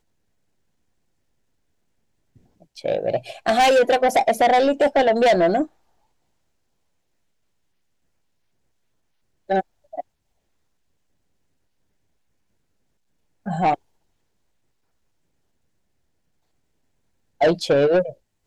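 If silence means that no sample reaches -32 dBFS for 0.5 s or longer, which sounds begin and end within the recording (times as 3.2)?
2.77–5.65
9.5–10.01
13.46–13.75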